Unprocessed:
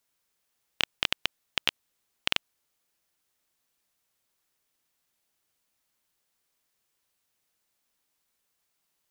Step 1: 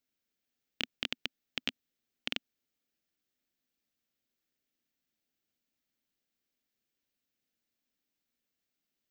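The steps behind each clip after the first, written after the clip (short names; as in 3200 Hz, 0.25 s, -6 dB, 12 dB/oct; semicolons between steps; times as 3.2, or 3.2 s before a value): fifteen-band EQ 250 Hz +10 dB, 1000 Hz -10 dB, 10000 Hz -12 dB; gain -7 dB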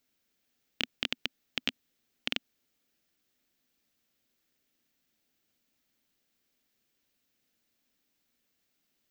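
limiter -18 dBFS, peak gain reduction 5.5 dB; gain +8.5 dB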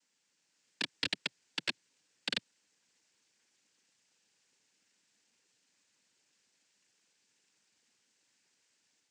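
AGC gain up to 3.5 dB; noise vocoder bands 8; gain -4.5 dB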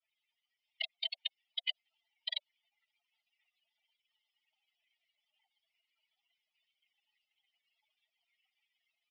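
spectral contrast raised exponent 3.8; mistuned SSB +380 Hz 430–3400 Hz; gain +1 dB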